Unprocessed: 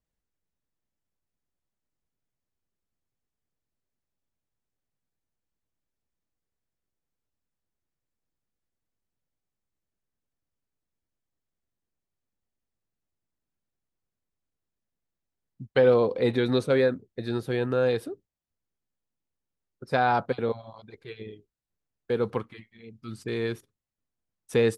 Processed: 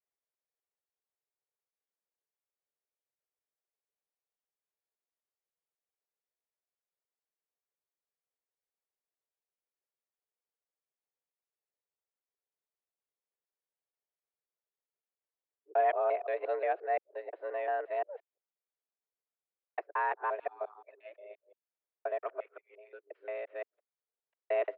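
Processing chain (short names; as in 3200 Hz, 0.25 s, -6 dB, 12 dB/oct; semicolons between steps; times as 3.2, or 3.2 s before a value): local time reversal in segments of 0.175 s; mistuned SSB +190 Hz 220–2400 Hz; gain -8 dB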